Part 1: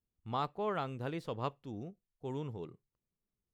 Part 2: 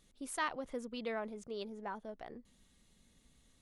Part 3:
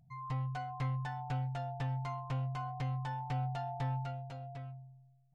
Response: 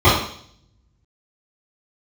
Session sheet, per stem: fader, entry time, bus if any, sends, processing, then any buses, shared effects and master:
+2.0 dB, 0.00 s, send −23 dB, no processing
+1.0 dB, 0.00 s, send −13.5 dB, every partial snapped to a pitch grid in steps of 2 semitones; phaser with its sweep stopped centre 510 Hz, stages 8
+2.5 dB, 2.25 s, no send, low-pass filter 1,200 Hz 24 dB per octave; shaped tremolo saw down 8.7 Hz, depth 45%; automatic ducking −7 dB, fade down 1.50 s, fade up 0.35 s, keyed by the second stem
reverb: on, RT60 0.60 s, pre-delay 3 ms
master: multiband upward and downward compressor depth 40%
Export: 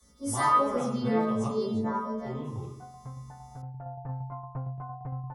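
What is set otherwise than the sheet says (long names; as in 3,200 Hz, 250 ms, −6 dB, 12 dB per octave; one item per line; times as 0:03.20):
stem 1 +2.0 dB → −6.5 dB
master: missing multiband upward and downward compressor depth 40%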